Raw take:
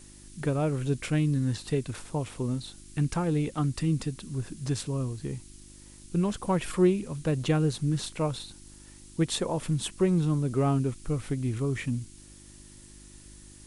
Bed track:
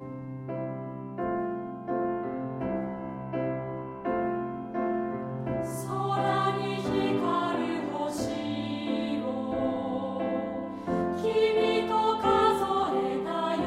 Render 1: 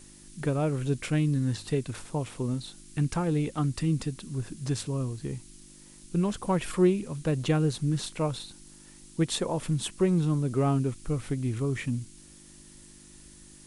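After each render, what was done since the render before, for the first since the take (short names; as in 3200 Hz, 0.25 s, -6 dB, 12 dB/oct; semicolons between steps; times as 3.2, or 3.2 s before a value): de-hum 50 Hz, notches 2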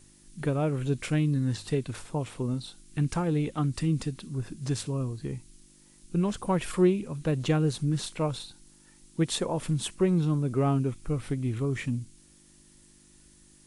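noise print and reduce 6 dB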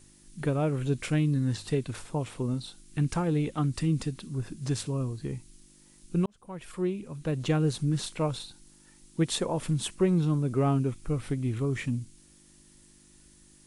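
6.26–7.68 fade in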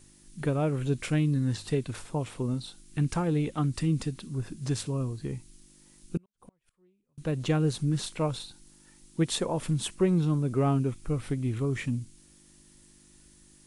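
6.17–7.18 flipped gate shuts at -36 dBFS, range -36 dB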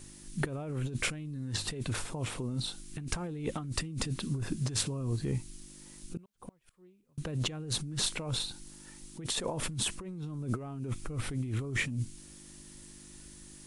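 negative-ratio compressor -35 dBFS, ratio -1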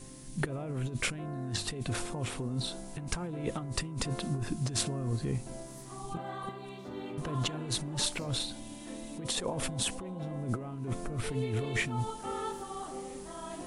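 add bed track -14 dB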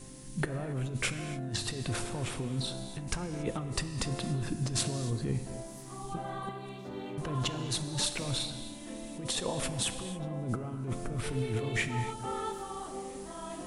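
non-linear reverb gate 0.31 s flat, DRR 9 dB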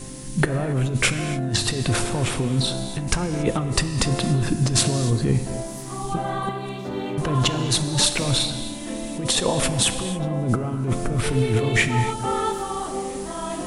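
gain +12 dB; limiter -2 dBFS, peak gain reduction 1 dB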